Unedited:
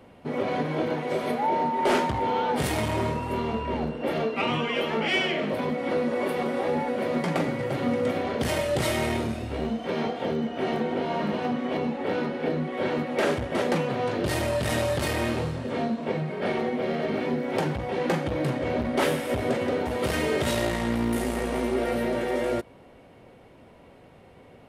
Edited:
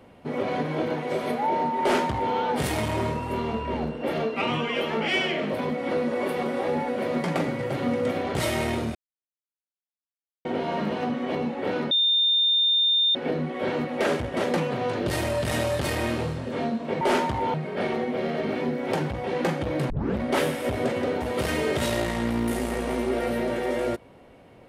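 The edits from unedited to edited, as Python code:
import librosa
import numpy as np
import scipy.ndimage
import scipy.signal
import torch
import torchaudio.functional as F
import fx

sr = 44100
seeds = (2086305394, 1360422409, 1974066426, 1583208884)

y = fx.edit(x, sr, fx.duplicate(start_s=1.81, length_s=0.53, to_s=16.19),
    fx.cut(start_s=8.35, length_s=0.42),
    fx.silence(start_s=9.37, length_s=1.5),
    fx.insert_tone(at_s=12.33, length_s=1.24, hz=3620.0, db=-18.0),
    fx.tape_start(start_s=18.55, length_s=0.29), tone=tone)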